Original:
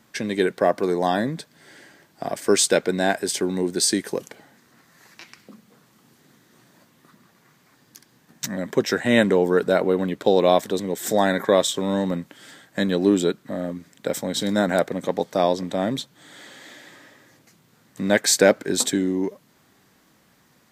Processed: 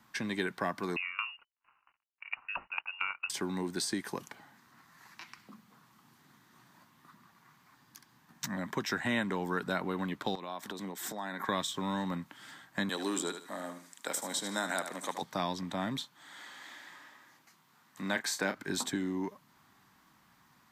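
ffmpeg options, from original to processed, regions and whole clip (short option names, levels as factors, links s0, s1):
-filter_complex "[0:a]asettb=1/sr,asplit=3[s0][s1][s2];[s0]atrim=end=0.964[s3];[s1]atrim=start=0.96:end=3.3,asetpts=PTS-STARTPTS,afade=t=in:d=0.004:c=qsin,afade=t=out:st=2.336:d=0.004:c=qsin,aeval=exprs='sgn(val(0))*max(abs(val(0))-0.00447,0)':c=same,lowpass=f=2600:t=q:w=0.5098,lowpass=f=2600:t=q:w=0.6013,lowpass=f=2600:t=q:w=0.9,lowpass=f=2600:t=q:w=2.563,afreqshift=-3000,aeval=exprs='val(0)*pow(10,-20*if(lt(mod(4.4*n/s,1),2*abs(4.4)/1000),1-mod(4.4*n/s,1)/(2*abs(4.4)/1000),(mod(4.4*n/s,1)-2*abs(4.4)/1000)/(1-2*abs(4.4)/1000))/20)':c=same[s4];[s2]atrim=start=3.296[s5];[s3][s4]acrossfade=d=0.004:c1=hsin:c2=qsin[s6];[s6][s5]acrossfade=d=0.004:c1=qsin:c2=hsin,asettb=1/sr,asplit=3[s7][s8][s9];[s7]atrim=end=10.354[s10];[s8]atrim=start=10.35:end=11.49,asetpts=PTS-STARTPTS,afade=t=in:d=0.004:c=qsin,afade=t=out:st=1.136:d=0.004:c=qsin,highpass=160,acompressor=threshold=0.0501:ratio=10:attack=3.2:release=140:knee=1:detection=peak[s11];[s9]atrim=start=11.486[s12];[s10][s11]acrossfade=d=0.004:c1=hsin:c2=qsin[s13];[s13][s12]acrossfade=d=0.004:c1=qsin:c2=hsin,asettb=1/sr,asplit=3[s14][s15][s16];[s14]atrim=end=12.894[s17];[s15]atrim=start=12.89:end=15.22,asetpts=PTS-STARTPTS,afade=t=in:d=0.004:c=qsin,afade=t=out:st=2.326:d=0.004:c=qsin,highpass=380,equalizer=f=8600:t=o:w=1.3:g=13.5,aecho=1:1:75|150|225:0.299|0.0776|0.0202,atrim=end_sample=102753[s18];[s16]atrim=start=15.216[s19];[s17][s18]acrossfade=d=0.004:c1=hsin:c2=qsin[s20];[s20][s19]acrossfade=d=0.004:c1=qsin:c2=hsin,asettb=1/sr,asplit=3[s21][s22][s23];[s21]atrim=end=15.974[s24];[s22]atrim=start=15.97:end=18.55,asetpts=PTS-STARTPTS,afade=t=in:d=0.004:c=qsin,afade=t=out:st=2.576:d=0.004:c=qsin,highpass=f=370:p=1,asplit=2[s25][s26];[s26]adelay=31,volume=0.316[s27];[s25][s27]amix=inputs=2:normalize=0,atrim=end_sample=113778[s28];[s23]atrim=start=18.546[s29];[s24][s28]acrossfade=d=0.004:c1=hsin:c2=qsin[s30];[s30][s29]acrossfade=d=0.004:c1=qsin:c2=hsin,equalizer=f=500:t=o:w=1:g=-11,equalizer=f=1000:t=o:w=1:g=9,equalizer=f=8000:t=o:w=1:g=-3,acrossover=split=310|1400[s31][s32][s33];[s31]acompressor=threshold=0.0355:ratio=4[s34];[s32]acompressor=threshold=0.0316:ratio=4[s35];[s33]acompressor=threshold=0.0398:ratio=4[s36];[s34][s35][s36]amix=inputs=3:normalize=0,volume=0.501"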